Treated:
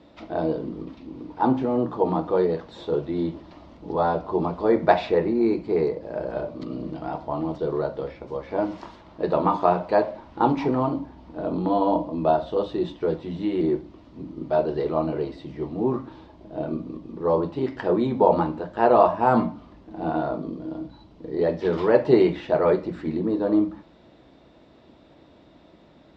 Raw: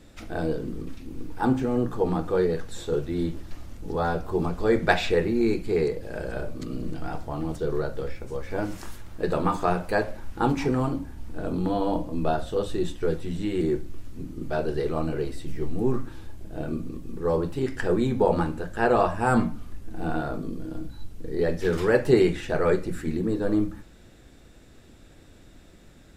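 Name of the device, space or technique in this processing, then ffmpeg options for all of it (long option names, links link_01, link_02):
guitar cabinet: -filter_complex "[0:a]asettb=1/sr,asplit=3[link_01][link_02][link_03];[link_01]atrim=end=4.634[link_04];[link_02]atrim=start=4.63:end=6.35,asetpts=PTS-STARTPTS,afade=type=in:duration=0.004:curve=qsin,afade=type=out:start_time=1.716:duration=0.004:curve=qsin,equalizer=frequency=3300:width_type=o:width=1:gain=-5[link_05];[link_03]atrim=start=6.346[link_06];[link_04][link_05]acrossfade=duration=0.004:curve1=hsin:curve2=qsin[link_07];[link_07][link_06]acrossfade=duration=0.004:curve1=qsin:curve2=hsin,highpass=90,equalizer=frequency=100:width_type=q:width=4:gain=-9,equalizer=frequency=310:width_type=q:width=4:gain=4,equalizer=frequency=630:width_type=q:width=4:gain=8,equalizer=frequency=970:width_type=q:width=4:gain=9,equalizer=frequency=1600:width_type=q:width=4:gain=-6,equalizer=frequency=2500:width_type=q:width=4:gain=-3,lowpass=frequency=4400:width=0.5412,lowpass=frequency=4400:width=1.3066"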